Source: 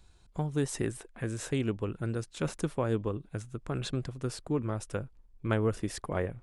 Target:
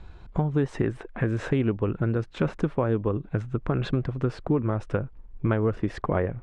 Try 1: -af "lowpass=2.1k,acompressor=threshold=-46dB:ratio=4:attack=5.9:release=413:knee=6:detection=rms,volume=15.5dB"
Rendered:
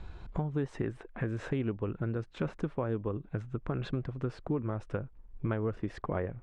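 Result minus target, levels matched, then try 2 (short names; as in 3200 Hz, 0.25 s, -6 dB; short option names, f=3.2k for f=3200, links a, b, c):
compressor: peak gain reduction +8 dB
-af "lowpass=2.1k,acompressor=threshold=-35dB:ratio=4:attack=5.9:release=413:knee=6:detection=rms,volume=15.5dB"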